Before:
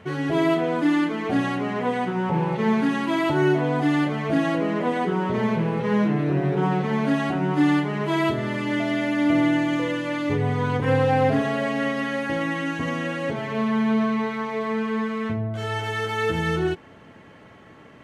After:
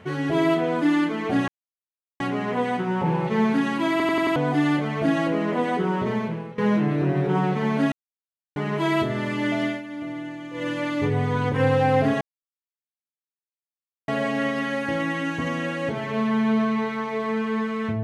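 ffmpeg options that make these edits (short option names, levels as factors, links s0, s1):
-filter_complex "[0:a]asplit=13[s0][s1][s2][s3][s4][s5][s6][s7][s8][s9][s10][s11][s12];[s0]atrim=end=1.48,asetpts=PTS-STARTPTS,afade=t=out:st=1.476:d=0.004:c=hsin,apad=pad_dur=0.72[s13];[s1]atrim=start=1.48:end=3.282,asetpts=PTS-STARTPTS,afade=t=in:d=0.004:c=hsin[s14];[s2]atrim=start=3.188:end=3.282[s15];[s3]atrim=start=3.188:end=3.282[s16];[s4]atrim=start=3.188:end=3.282[s17];[s5]atrim=start=3.188:end=3.282[s18];[s6]atrim=start=3.638:end=5.86,asetpts=PTS-STARTPTS,afade=t=out:st=1.632:d=0.59:silence=0.11885[s19];[s7]atrim=start=5.86:end=7.2,asetpts=PTS-STARTPTS,afade=t=in:d=0.004:c=hsin:silence=0.11885,afade=t=out:st=1.336:d=0.004:c=hsin[s20];[s8]atrim=start=7.2:end=7.84,asetpts=PTS-STARTPTS,volume=0[s21];[s9]atrim=start=7.84:end=9.1,asetpts=PTS-STARTPTS,afade=t=in:d=0.004:c=hsin,afade=t=out:st=1.09:d=0.17:silence=0.223872[s22];[s10]atrim=start=9.1:end=9.8,asetpts=PTS-STARTPTS,volume=0.224[s23];[s11]atrim=start=9.8:end=11.49,asetpts=PTS-STARTPTS,afade=t=in:d=0.17:silence=0.223872,afade=t=out:st=1.686:d=0.004:c=hsin,apad=pad_dur=1.87[s24];[s12]atrim=start=11.49,asetpts=PTS-STARTPTS,afade=t=in:d=0.004:c=hsin[s25];[s13][s14]concat=n=2:v=0:a=1[s26];[s26][s15]acrossfade=d=0.004:c1=hsin:c2=hsin[s27];[s27][s16]acrossfade=d=0.004:c1=hsin:c2=hsin[s28];[s28][s17]acrossfade=d=0.004:c1=hsin:c2=hsin[s29];[s29][s18]acrossfade=d=0.004:c1=hsin:c2=hsin[s30];[s19][s20][s21][s22][s23][s24][s25]concat=n=7:v=0:a=1[s31];[s30][s31]acrossfade=d=0.004:c1=hsin:c2=hsin"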